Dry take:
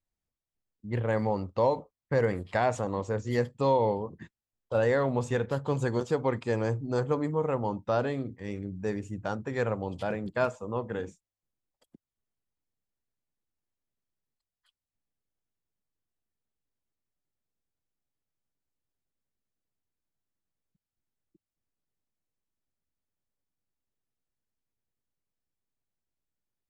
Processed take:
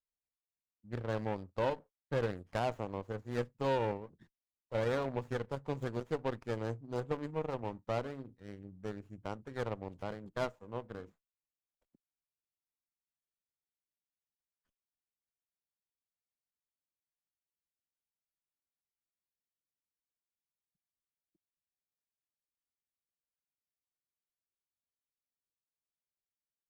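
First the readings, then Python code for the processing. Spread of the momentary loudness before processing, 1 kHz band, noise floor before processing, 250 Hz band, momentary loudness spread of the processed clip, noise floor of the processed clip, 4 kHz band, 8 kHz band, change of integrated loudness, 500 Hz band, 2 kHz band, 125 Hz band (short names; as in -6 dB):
9 LU, -8.0 dB, under -85 dBFS, -9.0 dB, 11 LU, under -85 dBFS, -3.5 dB, n/a, -8.5 dB, -8.5 dB, -8.5 dB, -8.5 dB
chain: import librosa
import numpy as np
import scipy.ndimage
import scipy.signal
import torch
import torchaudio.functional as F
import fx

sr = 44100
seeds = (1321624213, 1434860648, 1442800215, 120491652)

y = fx.cheby_harmonics(x, sr, harmonics=(7,), levels_db=(-21,), full_scale_db=-13.5)
y = fx.running_max(y, sr, window=9)
y = F.gain(torch.from_numpy(y), -7.5).numpy()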